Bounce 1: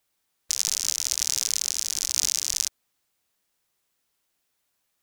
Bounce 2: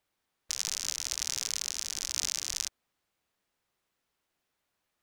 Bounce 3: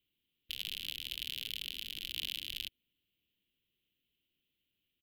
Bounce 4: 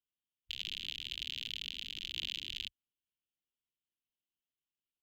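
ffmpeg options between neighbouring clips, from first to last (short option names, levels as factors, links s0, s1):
-af "highshelf=f=4400:g=-12"
-af "firequalizer=gain_entry='entry(300,0);entry(840,-29);entry(3000,8);entry(5900,-28);entry(13000,0)':delay=0.05:min_phase=1"
-af "afwtdn=0.00178"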